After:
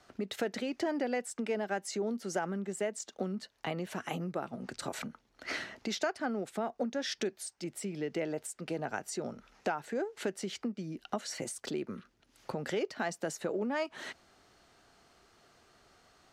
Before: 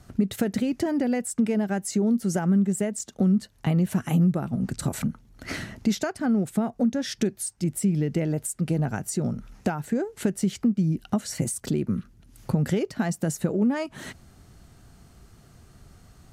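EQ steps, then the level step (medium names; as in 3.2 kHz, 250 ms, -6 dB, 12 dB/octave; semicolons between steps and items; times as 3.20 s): three-band isolator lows -21 dB, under 340 Hz, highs -19 dB, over 5.5 kHz; treble shelf 6 kHz +7 dB; -2.5 dB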